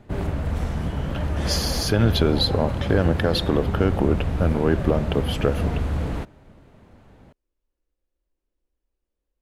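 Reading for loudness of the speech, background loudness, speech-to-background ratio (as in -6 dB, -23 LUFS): -23.0 LUFS, -27.0 LUFS, 4.0 dB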